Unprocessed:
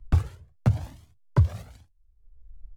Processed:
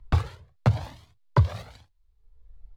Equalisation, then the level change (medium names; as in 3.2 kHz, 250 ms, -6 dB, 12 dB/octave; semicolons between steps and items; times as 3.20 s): graphic EQ 125/500/1000/2000/4000 Hz +4/+7/+9/+6/+11 dB; -3.5 dB